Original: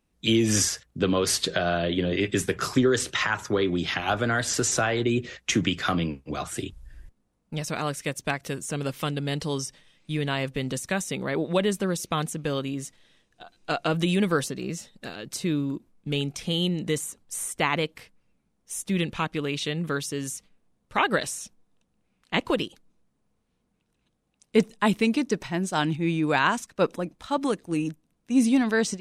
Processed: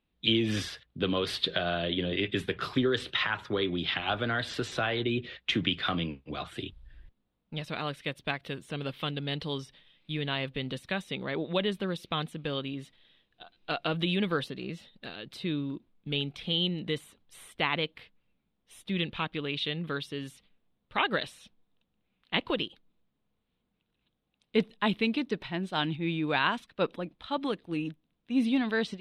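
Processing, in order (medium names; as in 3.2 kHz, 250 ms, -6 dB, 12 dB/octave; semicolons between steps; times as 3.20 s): resonant high shelf 4.9 kHz -11.5 dB, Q 3; trim -6 dB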